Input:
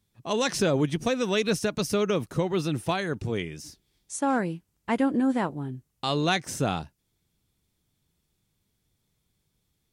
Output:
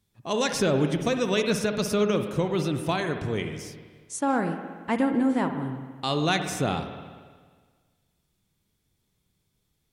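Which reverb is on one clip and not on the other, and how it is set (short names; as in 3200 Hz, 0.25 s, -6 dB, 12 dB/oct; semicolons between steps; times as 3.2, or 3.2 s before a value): spring tank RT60 1.6 s, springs 53/58 ms, chirp 65 ms, DRR 6.5 dB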